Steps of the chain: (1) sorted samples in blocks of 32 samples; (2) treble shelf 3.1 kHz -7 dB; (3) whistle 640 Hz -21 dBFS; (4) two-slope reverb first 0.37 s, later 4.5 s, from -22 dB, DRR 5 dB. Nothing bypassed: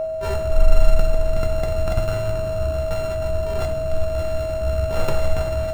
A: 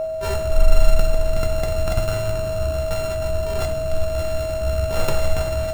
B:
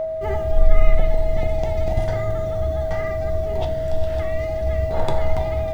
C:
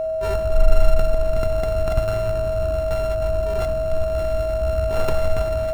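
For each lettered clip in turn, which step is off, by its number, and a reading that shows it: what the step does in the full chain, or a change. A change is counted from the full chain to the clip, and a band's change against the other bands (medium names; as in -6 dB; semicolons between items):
2, 8 kHz band +6.0 dB; 1, distortion -15 dB; 4, momentary loudness spread change -1 LU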